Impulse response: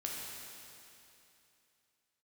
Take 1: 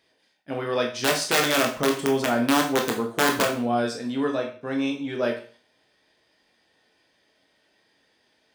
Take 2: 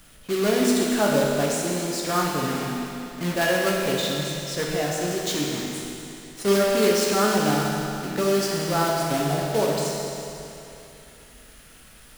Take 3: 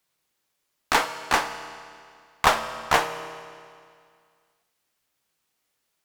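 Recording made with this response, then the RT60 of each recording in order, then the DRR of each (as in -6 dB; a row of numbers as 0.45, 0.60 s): 2; 0.40, 2.9, 2.2 s; 1.0, -3.0, 9.0 dB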